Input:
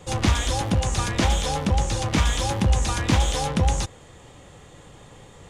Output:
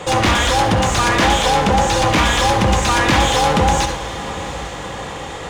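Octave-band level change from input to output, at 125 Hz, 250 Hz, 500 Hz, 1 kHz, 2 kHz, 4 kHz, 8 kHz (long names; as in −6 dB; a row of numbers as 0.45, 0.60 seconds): +3.0, +7.0, +11.5, +13.5, +13.0, +10.0, +7.0 decibels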